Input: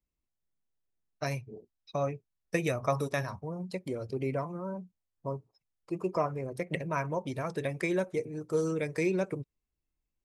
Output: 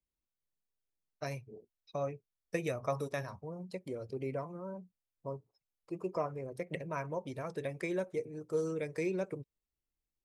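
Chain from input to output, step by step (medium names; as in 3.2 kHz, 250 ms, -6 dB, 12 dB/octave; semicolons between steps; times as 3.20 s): peaking EQ 490 Hz +3.5 dB 0.79 oct; trim -7 dB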